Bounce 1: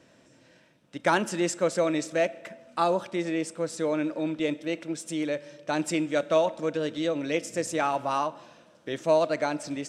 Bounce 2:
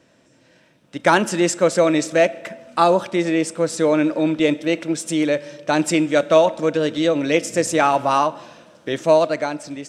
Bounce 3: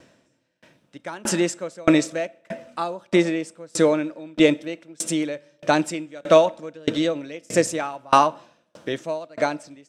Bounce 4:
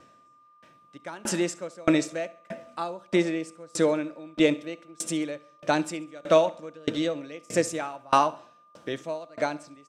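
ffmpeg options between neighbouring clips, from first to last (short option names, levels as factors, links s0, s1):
-af "dynaudnorm=f=110:g=13:m=2.82,volume=1.19"
-af "aeval=exprs='val(0)*pow(10,-32*if(lt(mod(1.6*n/s,1),2*abs(1.6)/1000),1-mod(1.6*n/s,1)/(2*abs(1.6)/1000),(mod(1.6*n/s,1)-2*abs(1.6)/1000)/(1-2*abs(1.6)/1000))/20)':c=same,volume=1.88"
-af "aeval=exprs='val(0)+0.00316*sin(2*PI*1200*n/s)':c=same,aecho=1:1:68|136|204:0.0944|0.0397|0.0167,volume=0.562"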